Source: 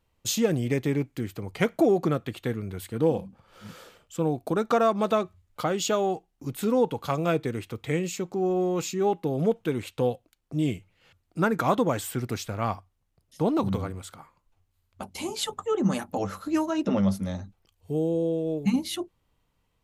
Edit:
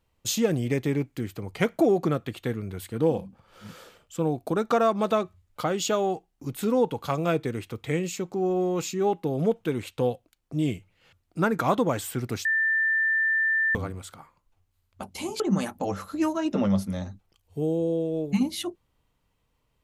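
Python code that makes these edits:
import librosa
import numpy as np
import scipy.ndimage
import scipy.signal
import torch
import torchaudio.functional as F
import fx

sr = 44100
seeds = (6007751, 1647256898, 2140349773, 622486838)

y = fx.edit(x, sr, fx.bleep(start_s=12.45, length_s=1.3, hz=1780.0, db=-20.5),
    fx.cut(start_s=15.4, length_s=0.33), tone=tone)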